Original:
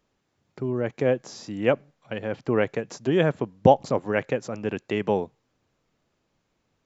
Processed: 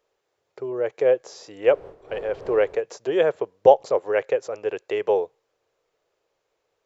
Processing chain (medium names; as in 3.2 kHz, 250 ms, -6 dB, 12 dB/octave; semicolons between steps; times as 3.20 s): 1.63–2.84 s: wind noise 280 Hz -27 dBFS; resonant low shelf 320 Hz -11.5 dB, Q 3; trim -1.5 dB